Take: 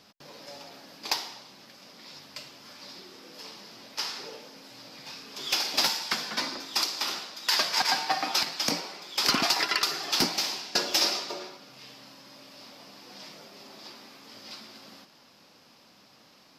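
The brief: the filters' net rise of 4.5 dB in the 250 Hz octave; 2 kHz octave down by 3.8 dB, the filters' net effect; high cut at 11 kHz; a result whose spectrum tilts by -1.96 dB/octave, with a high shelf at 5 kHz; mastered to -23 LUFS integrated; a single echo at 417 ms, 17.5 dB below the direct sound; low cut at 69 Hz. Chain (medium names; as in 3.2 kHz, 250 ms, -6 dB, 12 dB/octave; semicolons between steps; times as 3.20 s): high-pass 69 Hz; low-pass 11 kHz; peaking EQ 250 Hz +5.5 dB; peaking EQ 2 kHz -6.5 dB; treble shelf 5 kHz +8 dB; delay 417 ms -17.5 dB; trim +1.5 dB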